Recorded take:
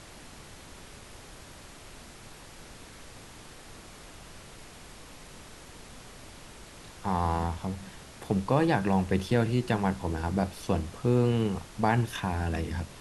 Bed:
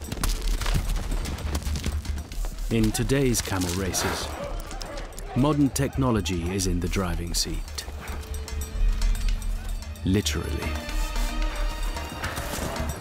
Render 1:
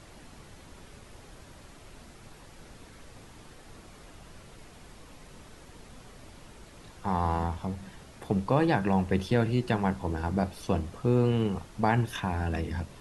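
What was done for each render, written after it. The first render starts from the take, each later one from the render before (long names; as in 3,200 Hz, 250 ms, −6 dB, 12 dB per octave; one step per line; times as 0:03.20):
broadband denoise 6 dB, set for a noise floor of −49 dBFS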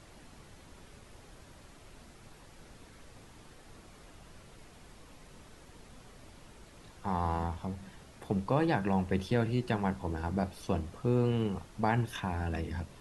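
level −4 dB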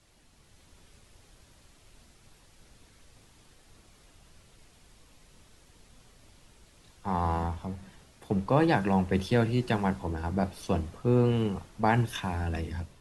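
automatic gain control gain up to 3 dB
multiband upward and downward expander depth 40%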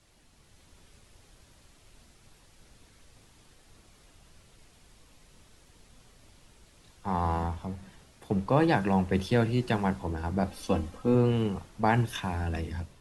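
0:10.47–0:11.15: comb filter 3.8 ms, depth 59%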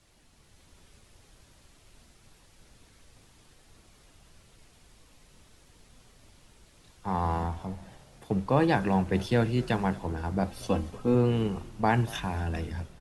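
echo with shifted repeats 232 ms, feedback 54%, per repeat −74 Hz, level −20.5 dB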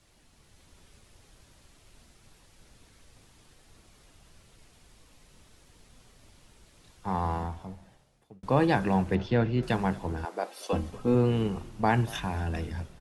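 0:07.08–0:08.43: fade out linear
0:09.15–0:09.63: high-frequency loss of the air 180 metres
0:10.25–0:10.73: high-pass filter 380 Hz 24 dB per octave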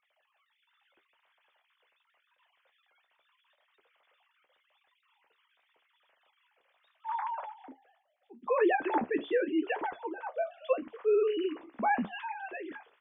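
three sine waves on the formant tracks
flanger 0.81 Hz, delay 8.9 ms, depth 7.1 ms, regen −50%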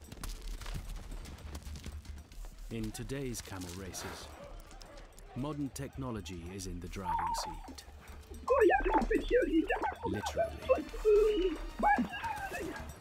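mix in bed −16.5 dB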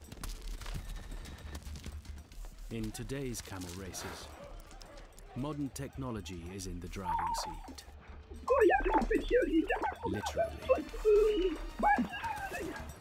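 0:00.79–0:01.57: hollow resonant body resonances 1,800/3,800 Hz, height 12 dB
0:07.94–0:08.36: high-frequency loss of the air 200 metres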